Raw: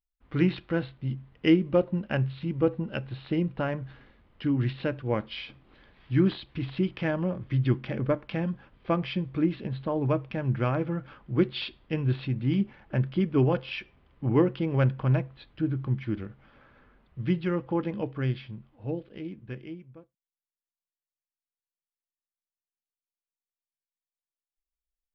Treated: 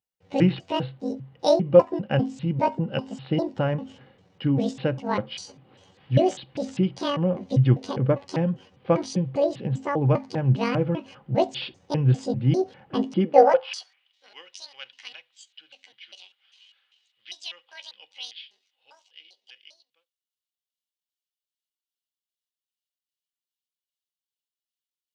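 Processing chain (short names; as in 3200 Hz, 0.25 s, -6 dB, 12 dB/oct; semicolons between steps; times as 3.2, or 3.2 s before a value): trilling pitch shifter +11 st, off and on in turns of 0.199 s; high-pass sweep 130 Hz -> 3400 Hz, 13.01–14.11; small resonant body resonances 520/780/2900 Hz, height 11 dB, ringing for 45 ms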